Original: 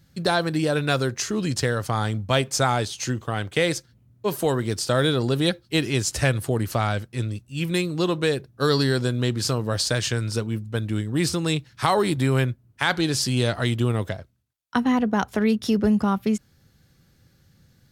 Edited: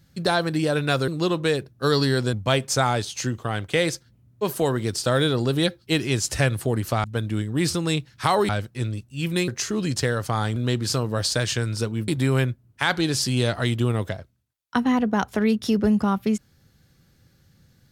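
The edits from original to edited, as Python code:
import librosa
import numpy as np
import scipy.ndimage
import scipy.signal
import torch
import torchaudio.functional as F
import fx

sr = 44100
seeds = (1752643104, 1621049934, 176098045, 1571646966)

y = fx.edit(x, sr, fx.swap(start_s=1.08, length_s=1.08, other_s=7.86, other_length_s=1.25),
    fx.move(start_s=10.63, length_s=1.45, to_s=6.87), tone=tone)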